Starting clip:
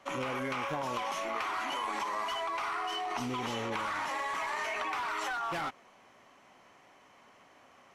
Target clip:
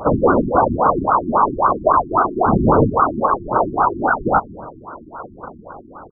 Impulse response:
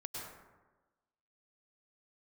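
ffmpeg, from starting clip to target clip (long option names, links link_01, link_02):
-filter_complex "[0:a]atempo=1.3,acrusher=bits=8:mix=0:aa=0.5,aphaser=in_gain=1:out_gain=1:delay=3.5:decay=0.61:speed=1.1:type=sinusoidal,apsyclip=33dB,afftfilt=real='hypot(re,im)*cos(2*PI*random(0))':imag='hypot(re,im)*sin(2*PI*random(1))':win_size=512:overlap=0.75,asuperstop=centerf=3700:order=4:qfactor=2.8,asplit=2[link_01][link_02];[link_02]aecho=0:1:980|1960|2940:0.0944|0.0425|0.0191[link_03];[link_01][link_03]amix=inputs=2:normalize=0,aresample=22050,aresample=44100,afftfilt=real='re*lt(b*sr/1024,360*pow(1600/360,0.5+0.5*sin(2*PI*3.7*pts/sr)))':imag='im*lt(b*sr/1024,360*pow(1600/360,0.5+0.5*sin(2*PI*3.7*pts/sr)))':win_size=1024:overlap=0.75,volume=-1.5dB"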